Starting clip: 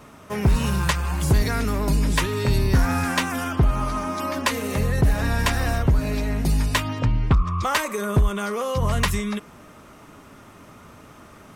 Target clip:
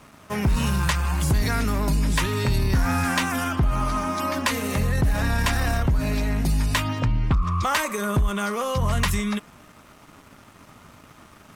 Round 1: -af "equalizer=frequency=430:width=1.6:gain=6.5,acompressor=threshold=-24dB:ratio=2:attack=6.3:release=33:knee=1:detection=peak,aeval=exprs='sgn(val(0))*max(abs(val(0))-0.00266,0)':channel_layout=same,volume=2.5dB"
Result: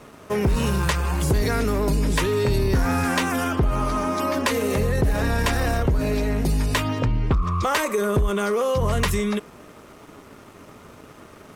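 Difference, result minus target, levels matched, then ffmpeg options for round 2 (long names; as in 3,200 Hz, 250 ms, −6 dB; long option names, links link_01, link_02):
500 Hz band +6.0 dB
-af "equalizer=frequency=430:width=1.6:gain=-4.5,acompressor=threshold=-24dB:ratio=2:attack=6.3:release=33:knee=1:detection=peak,aeval=exprs='sgn(val(0))*max(abs(val(0))-0.00266,0)':channel_layout=same,volume=2.5dB"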